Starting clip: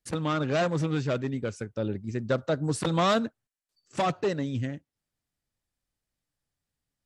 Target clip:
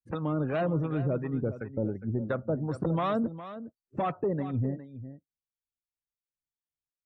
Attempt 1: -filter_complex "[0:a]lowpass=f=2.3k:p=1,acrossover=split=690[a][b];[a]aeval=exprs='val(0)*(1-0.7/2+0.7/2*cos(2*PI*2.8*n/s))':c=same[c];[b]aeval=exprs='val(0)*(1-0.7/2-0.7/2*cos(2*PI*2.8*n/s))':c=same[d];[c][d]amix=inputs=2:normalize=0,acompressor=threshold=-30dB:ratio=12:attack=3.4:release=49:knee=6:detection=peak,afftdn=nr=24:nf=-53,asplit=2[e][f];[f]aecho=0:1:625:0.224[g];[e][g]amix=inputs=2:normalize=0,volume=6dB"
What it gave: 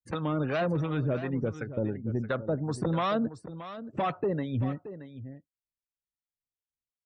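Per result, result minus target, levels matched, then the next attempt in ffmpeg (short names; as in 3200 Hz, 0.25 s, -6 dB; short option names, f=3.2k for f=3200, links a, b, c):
echo 0.215 s late; 2000 Hz band +4.0 dB
-filter_complex "[0:a]lowpass=f=2.3k:p=1,acrossover=split=690[a][b];[a]aeval=exprs='val(0)*(1-0.7/2+0.7/2*cos(2*PI*2.8*n/s))':c=same[c];[b]aeval=exprs='val(0)*(1-0.7/2-0.7/2*cos(2*PI*2.8*n/s))':c=same[d];[c][d]amix=inputs=2:normalize=0,acompressor=threshold=-30dB:ratio=12:attack=3.4:release=49:knee=6:detection=peak,afftdn=nr=24:nf=-53,asplit=2[e][f];[f]aecho=0:1:410:0.224[g];[e][g]amix=inputs=2:normalize=0,volume=6dB"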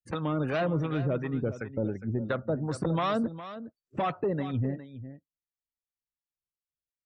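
2000 Hz band +4.0 dB
-filter_complex "[0:a]lowpass=f=890:p=1,acrossover=split=690[a][b];[a]aeval=exprs='val(0)*(1-0.7/2+0.7/2*cos(2*PI*2.8*n/s))':c=same[c];[b]aeval=exprs='val(0)*(1-0.7/2-0.7/2*cos(2*PI*2.8*n/s))':c=same[d];[c][d]amix=inputs=2:normalize=0,acompressor=threshold=-30dB:ratio=12:attack=3.4:release=49:knee=6:detection=peak,afftdn=nr=24:nf=-53,asplit=2[e][f];[f]aecho=0:1:410:0.224[g];[e][g]amix=inputs=2:normalize=0,volume=6dB"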